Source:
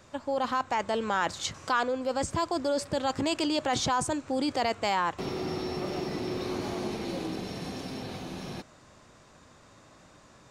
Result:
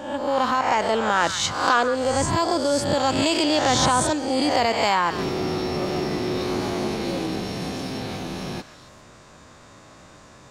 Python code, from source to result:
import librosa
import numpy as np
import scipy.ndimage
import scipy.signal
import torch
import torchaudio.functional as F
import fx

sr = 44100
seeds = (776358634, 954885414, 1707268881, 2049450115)

y = fx.spec_swells(x, sr, rise_s=0.78)
y = fx.echo_stepped(y, sr, ms=136, hz=1600.0, octaves=1.4, feedback_pct=70, wet_db=-9.0)
y = y * 10.0 ** (5.5 / 20.0)